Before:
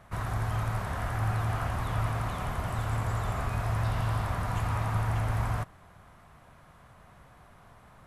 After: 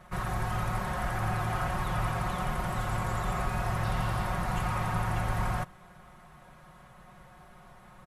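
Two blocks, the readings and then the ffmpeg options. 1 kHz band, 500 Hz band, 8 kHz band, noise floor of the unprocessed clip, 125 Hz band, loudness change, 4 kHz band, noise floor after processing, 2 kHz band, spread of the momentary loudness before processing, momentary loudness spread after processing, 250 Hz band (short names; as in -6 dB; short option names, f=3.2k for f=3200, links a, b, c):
+2.5 dB, +1.5 dB, +2.0 dB, -56 dBFS, -3.0 dB, -0.5 dB, +2.0 dB, -54 dBFS, +2.5 dB, 4 LU, 2 LU, +3.0 dB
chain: -af "aecho=1:1:5.5:0.78"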